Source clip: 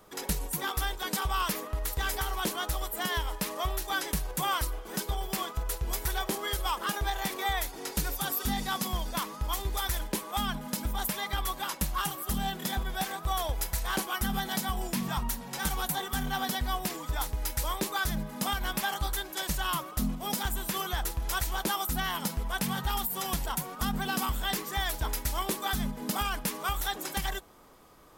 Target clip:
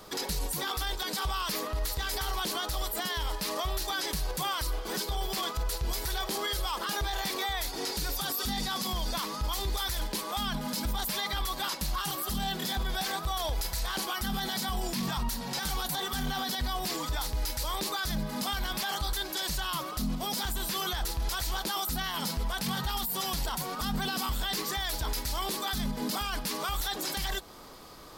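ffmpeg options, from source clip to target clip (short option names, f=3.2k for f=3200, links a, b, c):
-filter_complex "[0:a]equalizer=f=4.5k:t=o:w=0.7:g=9.5,asplit=2[a][b];[b]acompressor=threshold=-37dB:ratio=6,volume=2dB[c];[a][c]amix=inputs=2:normalize=0,alimiter=limit=-23.5dB:level=0:latency=1:release=10"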